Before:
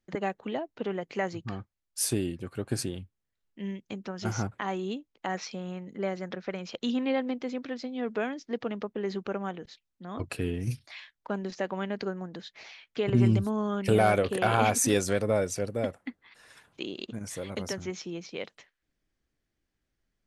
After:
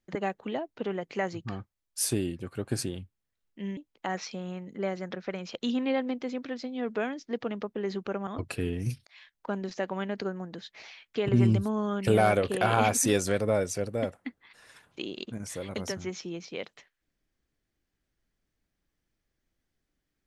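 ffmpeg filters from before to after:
-filter_complex "[0:a]asplit=4[s0][s1][s2][s3];[s0]atrim=end=3.772[s4];[s1]atrim=start=4.968:end=9.472[s5];[s2]atrim=start=10.078:end=10.88,asetpts=PTS-STARTPTS,afade=t=out:st=0.798:d=0.004:c=hsin[s6];[s3]atrim=start=10.88,asetpts=PTS-STARTPTS,afade=t=in:d=0.26[s7];[s4][s5]acrossfade=d=0.004:c1=hsin:c2=hsin[s8];[s6][s7]concat=n=2:v=0:a=1[s9];[s8][s9]acrossfade=d=0.004:c1=hsin:c2=hsin"

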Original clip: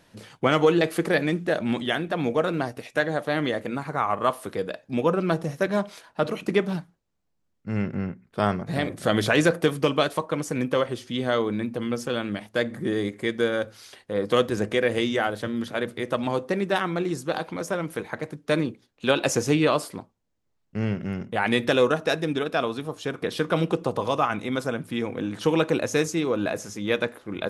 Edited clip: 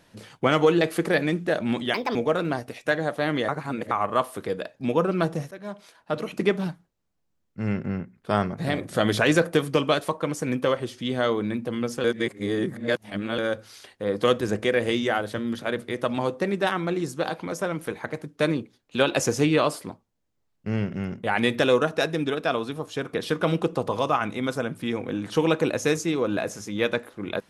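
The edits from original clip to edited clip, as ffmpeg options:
-filter_complex "[0:a]asplit=8[s0][s1][s2][s3][s4][s5][s6][s7];[s0]atrim=end=1.944[s8];[s1]atrim=start=1.94:end=2.24,asetpts=PTS-STARTPTS,asetrate=62622,aresample=44100[s9];[s2]atrim=start=2.236:end=3.572[s10];[s3]atrim=start=3.568:end=4.002,asetpts=PTS-STARTPTS,areverse[s11];[s4]atrim=start=3.998:end=5.6,asetpts=PTS-STARTPTS,afade=t=out:st=1.598:d=0.004:c=hsin:silence=0.112202[s12];[s5]atrim=start=5.6:end=12.132,asetpts=PTS-STARTPTS,afade=t=in:d=0.93:silence=0.112202[s13];[s6]atrim=start=12.128:end=13.472,asetpts=PTS-STARTPTS,areverse[s14];[s7]atrim=start=13.468[s15];[s8][s9]acrossfade=d=0.004:c1=hsin:c2=hsin[s16];[s16][s10]acrossfade=d=0.004:c1=hsin:c2=hsin[s17];[s17][s11]acrossfade=d=0.004:c1=hsin:c2=hsin[s18];[s12][s13]concat=n=2:v=0:a=1[s19];[s18][s19]acrossfade=d=0.004:c1=hsin:c2=hsin[s20];[s20][s14]acrossfade=d=0.004:c1=hsin:c2=hsin[s21];[s21][s15]acrossfade=d=0.004:c1=hsin:c2=hsin"

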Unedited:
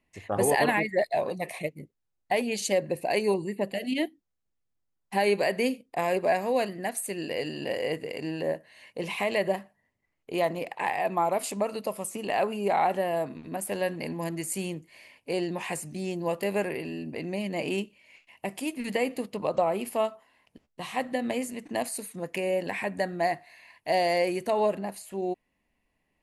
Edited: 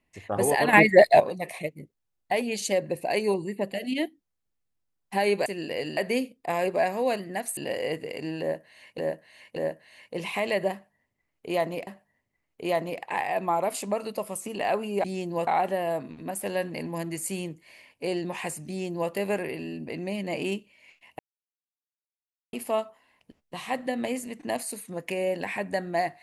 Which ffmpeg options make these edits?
-filter_complex "[0:a]asplit=13[s0][s1][s2][s3][s4][s5][s6][s7][s8][s9][s10][s11][s12];[s0]atrim=end=0.732[s13];[s1]atrim=start=0.728:end=1.202,asetpts=PTS-STARTPTS,volume=3.35[s14];[s2]atrim=start=1.198:end=5.462[s15];[s3]atrim=start=7.058:end=7.572[s16];[s4]atrim=start=5.458:end=7.062[s17];[s5]atrim=start=7.568:end=8.982[s18];[s6]atrim=start=8.398:end=8.982[s19];[s7]atrim=start=8.398:end=10.712[s20];[s8]atrim=start=9.558:end=12.732[s21];[s9]atrim=start=15.938:end=16.372[s22];[s10]atrim=start=12.728:end=18.45,asetpts=PTS-STARTPTS,afade=t=out:st=5.718:d=0.004:c=hsin[s23];[s11]atrim=start=18.45:end=19.79,asetpts=PTS-STARTPTS,volume=0[s24];[s12]atrim=start=19.79,asetpts=PTS-STARTPTS,afade=t=in:d=0.004:c=hsin[s25];[s13][s14]acrossfade=d=0.004:c1=hsin:c2=hsin[s26];[s26][s15]acrossfade=d=0.004:c1=hsin:c2=hsin[s27];[s27][s16]acrossfade=d=0.004:c1=hsin:c2=hsin[s28];[s28][s17]acrossfade=d=0.004:c1=hsin:c2=hsin[s29];[s29][s18]acrossfade=d=0.004:c1=hsin:c2=hsin[s30];[s30][s19]acrossfade=d=0.004:c1=hsin:c2=hsin[s31];[s31][s20]acrossfade=d=0.004:c1=hsin:c2=hsin[s32];[s32][s21]acrossfade=d=0.004:c1=hsin:c2=hsin[s33];[s33][s22]acrossfade=d=0.004:c1=hsin:c2=hsin[s34];[s23][s24][s25]concat=n=3:v=0:a=1[s35];[s34][s35]acrossfade=d=0.004:c1=hsin:c2=hsin"

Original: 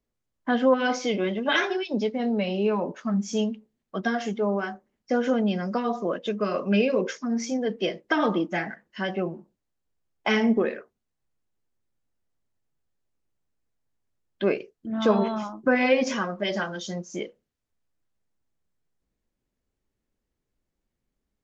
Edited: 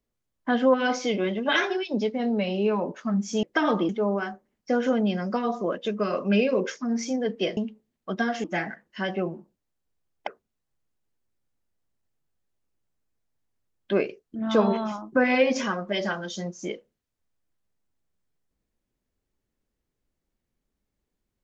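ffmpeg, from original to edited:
-filter_complex "[0:a]asplit=6[s0][s1][s2][s3][s4][s5];[s0]atrim=end=3.432[s6];[s1]atrim=start=7.978:end=8.442[s7];[s2]atrim=start=4.298:end=7.982[s8];[s3]atrim=start=3.428:end=4.302[s9];[s4]atrim=start=8.438:end=10.272[s10];[s5]atrim=start=10.778[s11];[s6][s7]acrossfade=d=0.004:c1=hsin:c2=hsin[s12];[s12][s8]acrossfade=d=0.004:c1=hsin:c2=hsin[s13];[s13][s9]acrossfade=d=0.004:c1=hsin:c2=hsin[s14];[s14][s10]acrossfade=d=0.004:c1=hsin:c2=hsin[s15];[s15][s11]acrossfade=d=0.004:c1=hsin:c2=hsin"

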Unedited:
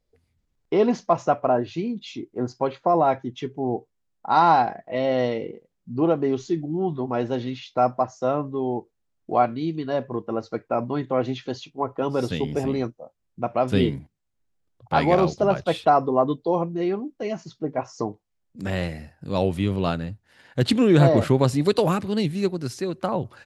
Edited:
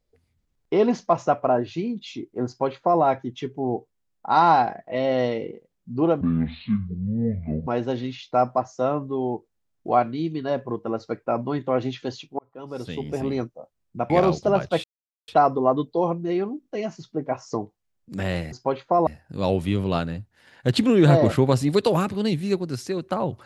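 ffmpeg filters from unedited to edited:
-filter_complex "[0:a]asplit=10[s0][s1][s2][s3][s4][s5][s6][s7][s8][s9];[s0]atrim=end=6.214[s10];[s1]atrim=start=6.21:end=7.1,asetpts=PTS-STARTPTS,asetrate=26901,aresample=44100[s11];[s2]atrim=start=7.096:end=11.82,asetpts=PTS-STARTPTS,afade=t=out:st=4.72:d=0.004:c=hsin[s12];[s3]atrim=start=11.82:end=13.532,asetpts=PTS-STARTPTS,afade=t=in:d=1.05[s13];[s4]atrim=start=15.048:end=15.79,asetpts=PTS-STARTPTS,afade=t=out:st=0.738:d=0.004:c=hsin,apad=pad_dur=0.44[s14];[s5]atrim=start=15.79:end=17.142,asetpts=PTS-STARTPTS,afade=t=in:d=0.004:c=hsin[s15];[s6]atrim=start=17.118:end=17.142[s16];[s7]atrim=start=17.118:end=18.992[s17];[s8]atrim=start=2.468:end=3.022[s18];[s9]atrim=start=18.988[s19];[s10][s11]acrossfade=d=0.004:c1=hsin:c2=hsin[s20];[s12][s13]concat=n=2:v=0:a=1[s21];[s20][s21]acrossfade=d=0.004:c1=hsin:c2=hsin[s22];[s14][s15]concat=n=2:v=0:a=1[s23];[s22][s23]acrossfade=d=0.004:c1=hsin:c2=hsin[s24];[s24][s16]acrossfade=d=0.004:c1=hsin:c2=hsin[s25];[s25][s17]acrossfade=d=0.004:c1=hsin:c2=hsin[s26];[s26][s18]acrossfade=d=0.004:c1=hsin:c2=hsin[s27];[s27][s19]acrossfade=d=0.004:c1=hsin:c2=hsin"

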